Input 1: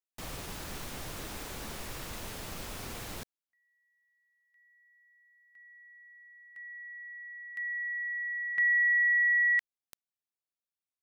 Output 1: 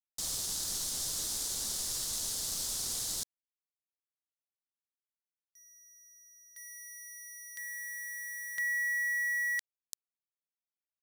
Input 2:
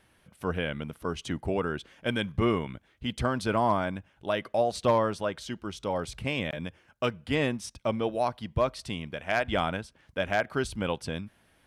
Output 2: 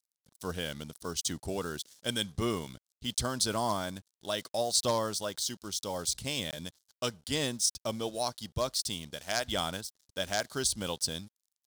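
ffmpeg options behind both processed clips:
-af "lowpass=9.3k,aeval=exprs='sgn(val(0))*max(abs(val(0))-0.00168,0)':c=same,aexciter=amount=12.5:drive=3.2:freq=3.7k,volume=-6dB"

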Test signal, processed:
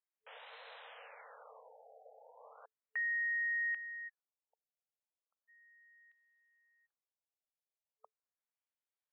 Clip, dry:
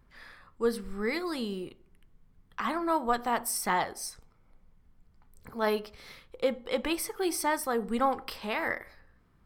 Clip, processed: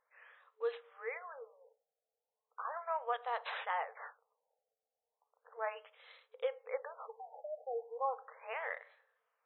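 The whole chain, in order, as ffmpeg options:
-af "acrusher=samples=6:mix=1:aa=0.000001,afftfilt=real='re*between(b*sr/4096,440,8500)':imag='im*between(b*sr/4096,440,8500)':win_size=4096:overlap=0.75,afftfilt=real='re*lt(b*sr/1024,810*pow(4200/810,0.5+0.5*sin(2*PI*0.36*pts/sr)))':imag='im*lt(b*sr/1024,810*pow(4200/810,0.5+0.5*sin(2*PI*0.36*pts/sr)))':win_size=1024:overlap=0.75,volume=-8dB"

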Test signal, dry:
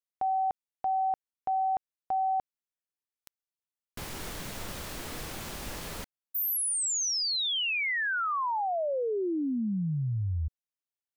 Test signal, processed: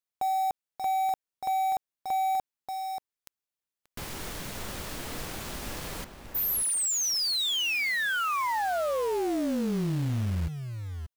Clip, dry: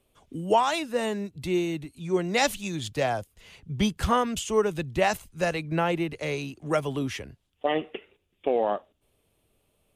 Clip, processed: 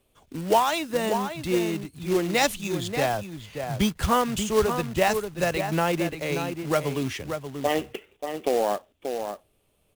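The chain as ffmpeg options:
-filter_complex "[0:a]asplit=2[a][b];[b]adelay=583.1,volume=-7dB,highshelf=f=4k:g=-13.1[c];[a][c]amix=inputs=2:normalize=0,acrusher=bits=3:mode=log:mix=0:aa=0.000001,volume=1dB"

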